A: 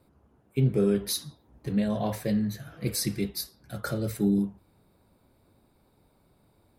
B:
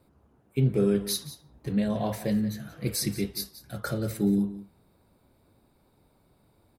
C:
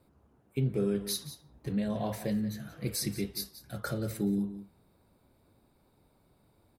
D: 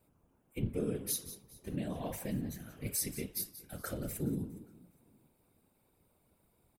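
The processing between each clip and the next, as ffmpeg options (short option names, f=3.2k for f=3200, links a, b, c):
-af "aecho=1:1:179:0.178"
-af "acompressor=threshold=-29dB:ratio=1.5,volume=-2.5dB"
-af "aexciter=amount=1.1:drive=6.8:freq=2.3k,aecho=1:1:412|824:0.0708|0.0219,afftfilt=real='hypot(re,im)*cos(2*PI*random(0))':imag='hypot(re,im)*sin(2*PI*random(1))':win_size=512:overlap=0.75"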